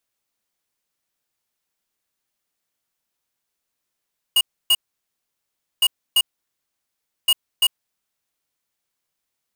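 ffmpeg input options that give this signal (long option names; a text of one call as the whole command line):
ffmpeg -f lavfi -i "aevalsrc='0.178*(2*lt(mod(2870*t,1),0.5)-1)*clip(min(mod(mod(t,1.46),0.34),0.05-mod(mod(t,1.46),0.34))/0.005,0,1)*lt(mod(t,1.46),0.68)':duration=4.38:sample_rate=44100" out.wav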